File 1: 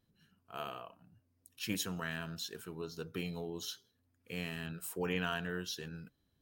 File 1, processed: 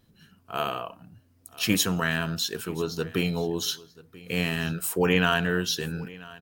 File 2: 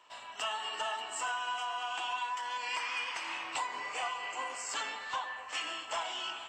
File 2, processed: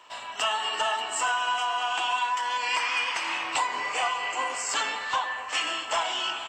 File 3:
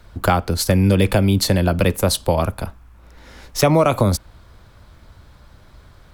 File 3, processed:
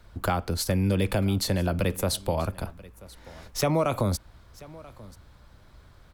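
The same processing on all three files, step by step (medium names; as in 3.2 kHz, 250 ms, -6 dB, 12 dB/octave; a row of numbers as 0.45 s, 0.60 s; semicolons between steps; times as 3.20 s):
in parallel at -1 dB: peak limiter -14 dBFS; on the sum: delay 985 ms -21 dB; normalise loudness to -27 LUFS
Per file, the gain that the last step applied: +8.0 dB, +3.5 dB, -12.0 dB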